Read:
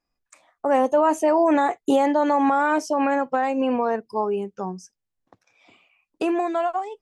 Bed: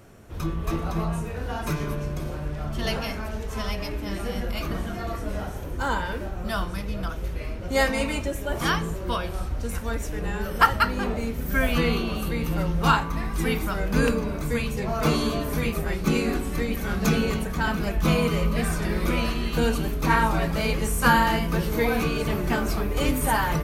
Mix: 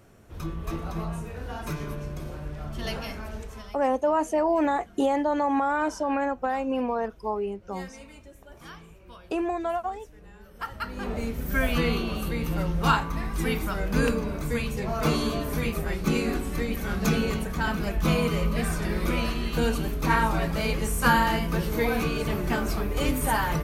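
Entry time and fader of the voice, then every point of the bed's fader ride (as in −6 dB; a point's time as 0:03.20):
3.10 s, −5.0 dB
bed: 0:03.40 −5 dB
0:03.84 −20.5 dB
0:10.52 −20.5 dB
0:11.18 −2 dB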